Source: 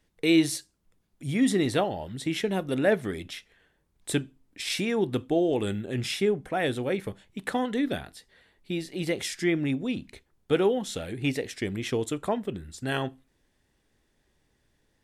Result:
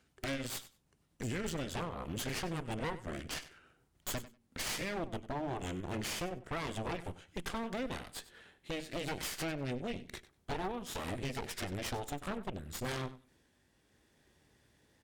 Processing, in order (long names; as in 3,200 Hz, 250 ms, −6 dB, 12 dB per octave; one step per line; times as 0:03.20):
pitch glide at a constant tempo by −3.5 semitones ending unshifted
downward compressor 12 to 1, threshold −40 dBFS, peak gain reduction 22.5 dB
high-pass filter 60 Hz
harmonic generator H 8 −9 dB, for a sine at −24.5 dBFS
on a send: repeating echo 96 ms, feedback 15%, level −17 dB
on the sum: gain into a clipping stage and back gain 34 dB
level +3 dB